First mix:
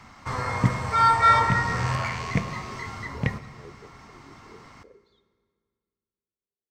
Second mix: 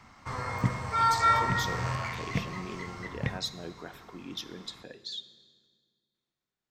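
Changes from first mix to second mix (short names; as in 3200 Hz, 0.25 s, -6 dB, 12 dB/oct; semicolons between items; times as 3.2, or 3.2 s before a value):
speech: remove band-pass 420 Hz, Q 4.5; background -6.0 dB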